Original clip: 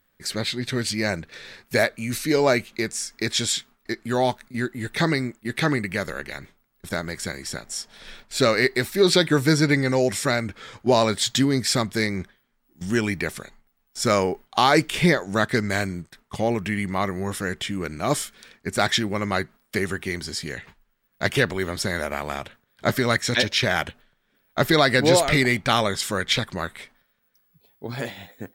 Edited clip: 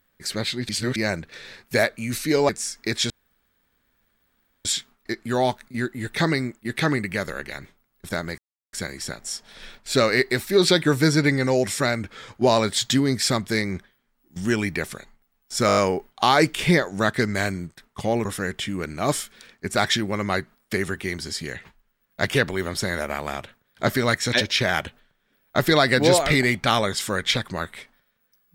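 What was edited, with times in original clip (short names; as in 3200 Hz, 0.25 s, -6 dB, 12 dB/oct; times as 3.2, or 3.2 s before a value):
0.69–0.96 reverse
2.49–2.84 cut
3.45 insert room tone 1.55 s
7.18 insert silence 0.35 s
14.12 stutter 0.02 s, 6 plays
16.6–17.27 cut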